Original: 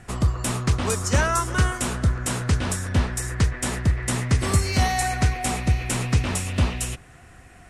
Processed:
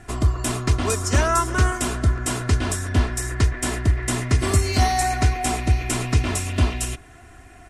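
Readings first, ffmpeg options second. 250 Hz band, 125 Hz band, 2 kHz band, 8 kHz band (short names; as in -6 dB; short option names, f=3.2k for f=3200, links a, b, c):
+1.0 dB, +1.0 dB, +0.5 dB, +1.0 dB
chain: -af "equalizer=f=240:w=0.57:g=2,aecho=1:1:2.9:0.57"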